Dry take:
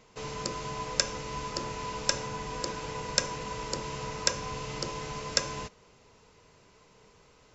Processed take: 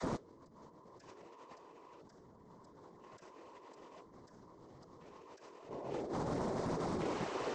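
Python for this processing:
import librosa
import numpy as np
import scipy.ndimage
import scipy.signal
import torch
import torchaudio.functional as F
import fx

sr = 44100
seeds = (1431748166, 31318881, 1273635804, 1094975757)

y = fx.filter_lfo_notch(x, sr, shape='square', hz=0.5, low_hz=210.0, high_hz=2600.0, q=1.4)
y = fx.vocoder(y, sr, bands=32, carrier='saw', carrier_hz=201.0)
y = fx.echo_bbd(y, sr, ms=217, stages=1024, feedback_pct=54, wet_db=-8.5)
y = fx.whisperise(y, sr, seeds[0])
y = fx.hum_notches(y, sr, base_hz=50, count=9)
y = fx.over_compress(y, sr, threshold_db=-60.0, ratio=-1.0)
y = fx.doppler_dist(y, sr, depth_ms=0.34)
y = F.gain(torch.from_numpy(y), 9.5).numpy()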